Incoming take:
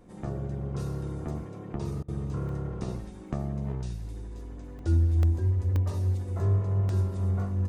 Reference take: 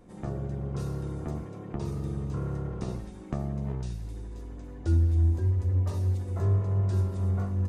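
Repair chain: interpolate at 2.49/3.28/4.79/5.23/5.76/6.89, 1.5 ms; interpolate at 2.03, 51 ms

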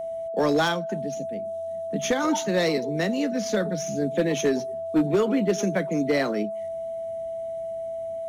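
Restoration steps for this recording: clip repair -15 dBFS; notch 660 Hz, Q 30

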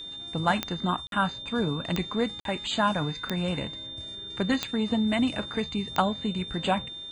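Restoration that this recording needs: de-click; notch 3600 Hz, Q 30; interpolate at 1.07/2.4, 52 ms

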